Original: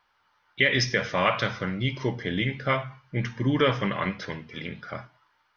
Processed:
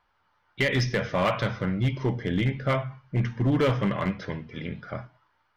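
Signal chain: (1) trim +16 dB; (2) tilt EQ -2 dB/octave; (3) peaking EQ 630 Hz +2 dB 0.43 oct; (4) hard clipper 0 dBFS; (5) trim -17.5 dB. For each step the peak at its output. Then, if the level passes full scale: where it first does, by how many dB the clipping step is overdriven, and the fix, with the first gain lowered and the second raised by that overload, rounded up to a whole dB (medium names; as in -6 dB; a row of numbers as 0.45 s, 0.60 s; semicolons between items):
+7.5 dBFS, +7.5 dBFS, +7.5 dBFS, 0.0 dBFS, -17.5 dBFS; step 1, 7.5 dB; step 1 +8 dB, step 5 -9.5 dB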